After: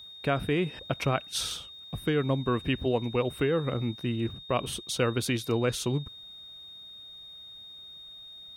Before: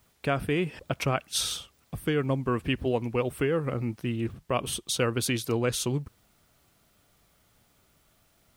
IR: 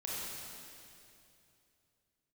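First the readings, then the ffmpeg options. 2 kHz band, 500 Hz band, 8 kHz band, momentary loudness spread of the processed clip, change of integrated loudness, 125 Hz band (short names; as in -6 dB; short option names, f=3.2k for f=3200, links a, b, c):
-1.0 dB, 0.0 dB, -4.5 dB, 16 LU, -0.5 dB, 0.0 dB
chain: -af "highshelf=f=4.4k:g=-6,aeval=exprs='val(0)+0.00631*sin(2*PI*3700*n/s)':c=same"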